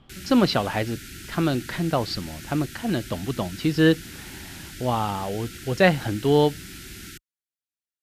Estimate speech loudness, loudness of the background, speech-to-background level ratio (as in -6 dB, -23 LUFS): -24.0 LUFS, -39.0 LUFS, 15.0 dB